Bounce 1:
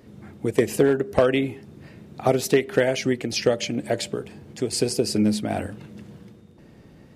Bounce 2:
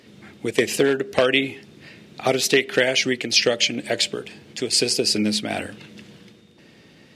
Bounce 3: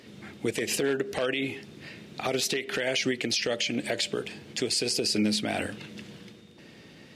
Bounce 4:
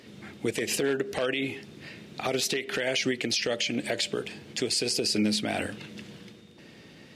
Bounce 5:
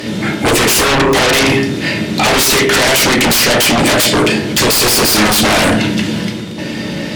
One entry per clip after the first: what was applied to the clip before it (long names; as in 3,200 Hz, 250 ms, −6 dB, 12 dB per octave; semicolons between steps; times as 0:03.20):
meter weighting curve D
downward compressor 5 to 1, threshold −20 dBFS, peak gain reduction 8 dB; brickwall limiter −17 dBFS, peak gain reduction 10.5 dB
no processing that can be heard
convolution reverb RT60 0.55 s, pre-delay 3 ms, DRR 1 dB; in parallel at −4 dB: sine wavefolder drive 18 dB, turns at −12 dBFS; on the sum: level +7 dB